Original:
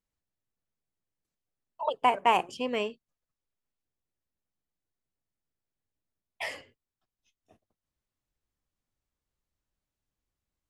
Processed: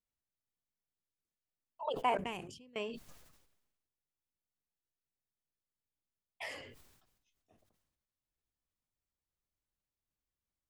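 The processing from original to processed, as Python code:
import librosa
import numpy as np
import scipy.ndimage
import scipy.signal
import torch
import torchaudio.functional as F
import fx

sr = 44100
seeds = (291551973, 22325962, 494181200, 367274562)

y = fx.tone_stack(x, sr, knobs='10-0-1', at=(2.17, 2.76))
y = fx.sustainer(y, sr, db_per_s=53.0)
y = y * 10.0 ** (-8.5 / 20.0)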